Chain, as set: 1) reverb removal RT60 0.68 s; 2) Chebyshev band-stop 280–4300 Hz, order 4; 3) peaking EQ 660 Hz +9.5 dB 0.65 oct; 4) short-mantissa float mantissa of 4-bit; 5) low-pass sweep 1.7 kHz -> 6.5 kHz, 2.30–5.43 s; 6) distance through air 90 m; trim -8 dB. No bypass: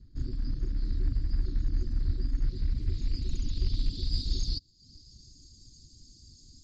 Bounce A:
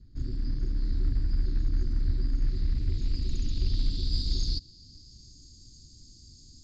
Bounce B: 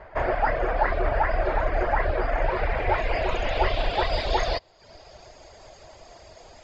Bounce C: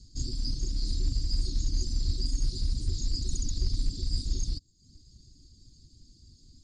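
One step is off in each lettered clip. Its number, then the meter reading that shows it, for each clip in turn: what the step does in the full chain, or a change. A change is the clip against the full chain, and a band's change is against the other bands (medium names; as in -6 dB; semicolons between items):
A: 1, loudness change +2.0 LU; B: 2, 1 kHz band +35.0 dB; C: 5, 2 kHz band -4.5 dB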